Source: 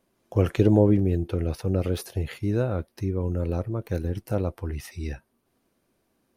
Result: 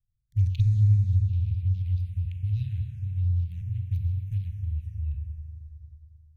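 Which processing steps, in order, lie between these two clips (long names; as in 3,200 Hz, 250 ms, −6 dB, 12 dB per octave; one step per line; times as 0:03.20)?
adaptive Wiener filter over 41 samples
inverse Chebyshev band-stop filter 260–1,200 Hz, stop band 50 dB
low-shelf EQ 110 Hz +6.5 dB
four-comb reverb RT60 3.2 s, combs from 30 ms, DRR 2.5 dB
phaser swept by the level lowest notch 430 Hz, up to 3,000 Hz, full sweep at −16 dBFS
level −2 dB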